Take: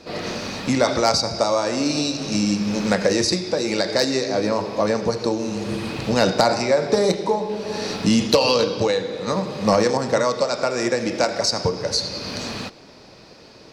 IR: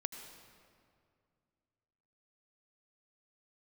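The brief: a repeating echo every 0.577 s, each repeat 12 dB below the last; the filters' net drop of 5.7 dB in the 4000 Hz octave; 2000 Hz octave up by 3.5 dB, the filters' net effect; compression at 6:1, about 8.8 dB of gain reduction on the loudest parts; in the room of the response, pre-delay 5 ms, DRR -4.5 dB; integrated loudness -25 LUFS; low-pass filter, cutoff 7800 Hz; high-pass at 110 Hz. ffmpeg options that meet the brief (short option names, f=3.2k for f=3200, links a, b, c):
-filter_complex "[0:a]highpass=110,lowpass=7.8k,equalizer=f=2k:t=o:g=6.5,equalizer=f=4k:t=o:g=-8,acompressor=threshold=-22dB:ratio=6,aecho=1:1:577|1154|1731:0.251|0.0628|0.0157,asplit=2[a][b];[1:a]atrim=start_sample=2205,adelay=5[c];[b][c]afir=irnorm=-1:irlink=0,volume=5dB[d];[a][d]amix=inputs=2:normalize=0,volume=-4.5dB"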